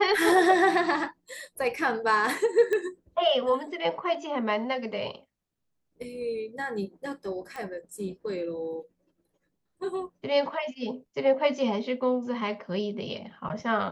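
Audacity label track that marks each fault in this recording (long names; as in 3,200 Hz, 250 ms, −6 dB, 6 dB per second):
2.730000	2.730000	click −17 dBFS
7.560000	7.560000	click −25 dBFS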